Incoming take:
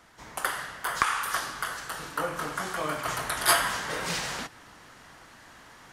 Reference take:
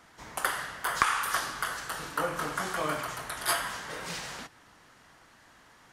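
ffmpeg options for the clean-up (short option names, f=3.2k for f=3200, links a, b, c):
-af "agate=range=-21dB:threshold=-44dB,asetnsamples=n=441:p=0,asendcmd='3.05 volume volume -6.5dB',volume=0dB"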